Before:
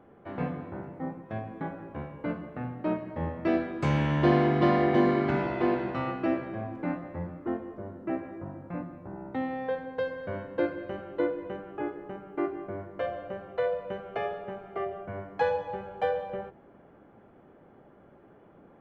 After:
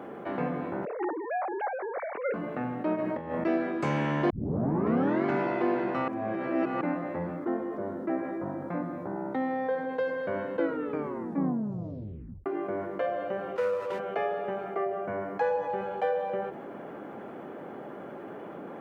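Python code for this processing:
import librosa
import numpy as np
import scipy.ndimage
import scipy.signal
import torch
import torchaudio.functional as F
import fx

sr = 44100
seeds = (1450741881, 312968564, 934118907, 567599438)

y = fx.sine_speech(x, sr, at=(0.85, 2.34))
y = fx.over_compress(y, sr, threshold_db=-38.0, ratio=-0.5, at=(2.95, 3.43), fade=0.02)
y = fx.peak_eq(y, sr, hz=2700.0, db=-10.5, octaves=0.22, at=(7.36, 9.89))
y = fx.lower_of_two(y, sr, delay_ms=2.1, at=(13.55, 13.98), fade=0.02)
y = fx.peak_eq(y, sr, hz=3400.0, db=-6.0, octaves=0.77, at=(14.64, 15.7))
y = fx.edit(y, sr, fx.tape_start(start_s=4.3, length_s=0.95),
    fx.reverse_span(start_s=6.08, length_s=0.73),
    fx.tape_stop(start_s=10.55, length_s=1.91), tone=tone)
y = scipy.signal.sosfilt(scipy.signal.butter(2, 210.0, 'highpass', fs=sr, output='sos'), y)
y = fx.dynamic_eq(y, sr, hz=3700.0, q=1.4, threshold_db=-55.0, ratio=4.0, max_db=-6)
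y = fx.env_flatten(y, sr, amount_pct=50)
y = y * 10.0 ** (-3.0 / 20.0)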